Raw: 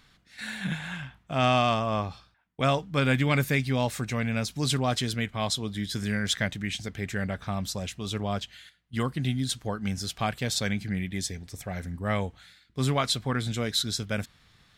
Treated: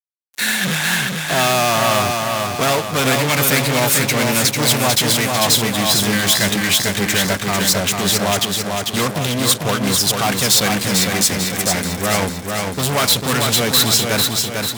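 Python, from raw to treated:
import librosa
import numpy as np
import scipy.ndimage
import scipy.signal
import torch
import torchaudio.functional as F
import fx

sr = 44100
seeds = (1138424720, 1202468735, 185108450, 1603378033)

y = fx.fuzz(x, sr, gain_db=37.0, gate_db=-43.0)
y = fx.highpass(y, sr, hz=250.0, slope=6)
y = fx.high_shelf(y, sr, hz=6800.0, db=8.5)
y = fx.echo_feedback(y, sr, ms=446, feedback_pct=52, wet_db=-4.0)
y = y * 10.0 ** (-1.0 / 20.0)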